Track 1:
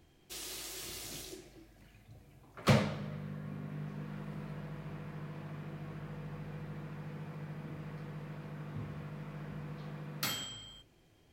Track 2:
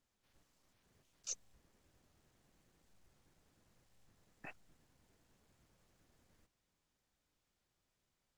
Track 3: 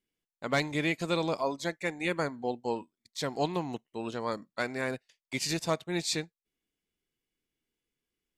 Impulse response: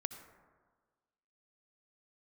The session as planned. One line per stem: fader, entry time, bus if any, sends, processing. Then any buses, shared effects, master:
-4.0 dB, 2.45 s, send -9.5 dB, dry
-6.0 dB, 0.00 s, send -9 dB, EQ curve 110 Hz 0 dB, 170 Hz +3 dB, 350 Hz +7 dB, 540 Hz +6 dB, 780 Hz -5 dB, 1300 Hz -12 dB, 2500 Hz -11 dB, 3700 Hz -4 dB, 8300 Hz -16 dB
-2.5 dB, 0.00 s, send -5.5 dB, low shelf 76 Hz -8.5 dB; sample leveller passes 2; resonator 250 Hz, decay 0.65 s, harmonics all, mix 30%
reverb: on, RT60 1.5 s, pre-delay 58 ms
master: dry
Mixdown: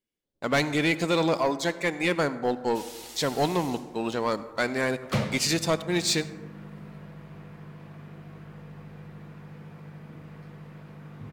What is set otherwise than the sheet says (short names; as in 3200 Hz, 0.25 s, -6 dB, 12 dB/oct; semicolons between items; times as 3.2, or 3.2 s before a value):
stem 2 -6.0 dB -> -15.5 dB; reverb return +6.0 dB